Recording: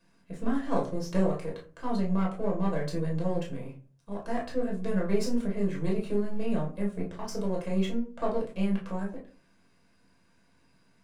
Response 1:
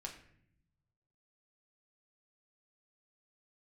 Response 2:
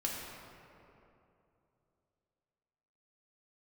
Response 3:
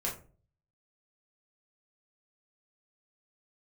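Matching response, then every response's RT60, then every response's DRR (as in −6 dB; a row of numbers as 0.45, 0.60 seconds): 3; 0.65, 2.9, 0.40 seconds; 0.5, −3.5, −3.0 decibels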